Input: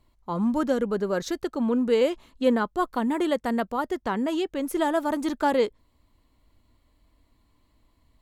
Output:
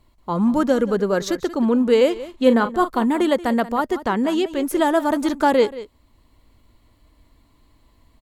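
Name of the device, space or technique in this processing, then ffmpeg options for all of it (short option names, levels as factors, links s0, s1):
ducked delay: -filter_complex "[0:a]asettb=1/sr,asplit=3[s0][s1][s2];[s0]atrim=end=2.124[s3];[s1]atrim=start=2.12:end=3.04,asetpts=PTS-STARTPTS,afade=t=in:d=0.004:c=qsin,afade=t=out:st=0.916:d=0.004:c=qsin,asplit=2[s4][s5];[s5]adelay=39,volume=0.282[s6];[s4][s6]amix=inputs=2:normalize=0,atrim=end_sample=40572[s7];[s2]atrim=start=3.036[s8];[s3][s7]acrossfade=d=0.004:c1=hsin:c2=qsin[s9];[s9][s8]acrossfade=d=0.004:c1=qsin:c2=hsin,asplit=3[s10][s11][s12];[s11]adelay=181,volume=0.75[s13];[s12]apad=whole_len=370068[s14];[s13][s14]sidechaincompress=threshold=0.0158:ratio=6:attack=16:release=545[s15];[s10][s15]amix=inputs=2:normalize=0,volume=2"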